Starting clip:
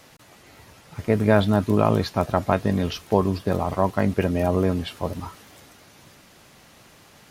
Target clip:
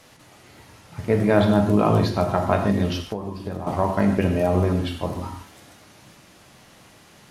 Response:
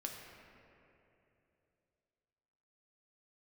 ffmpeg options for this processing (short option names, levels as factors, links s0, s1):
-filter_complex "[1:a]atrim=start_sample=2205,atrim=end_sample=3969,asetrate=24255,aresample=44100[s0];[0:a][s0]afir=irnorm=-1:irlink=0,asettb=1/sr,asplit=3[s1][s2][s3];[s1]atrim=end=3.014[s4];[s2]atrim=start=3.01:end=3.67,asetpts=PTS-STARTPTS,afade=t=in:d=0.004:c=qsin,afade=t=out:st=0.656:d=0.004:c=qsin,acompressor=threshold=0.0447:ratio=6[s5];[s3]atrim=start=3.666[s6];[s4][s5]acrossfade=d=0.004:c1=hsin:c2=qsin[s7];[s7][s6]acrossfade=d=0.004:c1=qsin:c2=hsin"